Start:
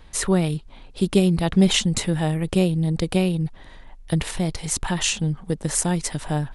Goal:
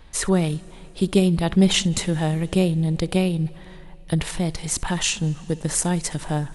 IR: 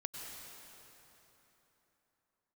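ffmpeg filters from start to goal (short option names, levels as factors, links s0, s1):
-filter_complex "[0:a]asplit=2[s0][s1];[1:a]atrim=start_sample=2205,adelay=63[s2];[s1][s2]afir=irnorm=-1:irlink=0,volume=0.119[s3];[s0][s3]amix=inputs=2:normalize=0"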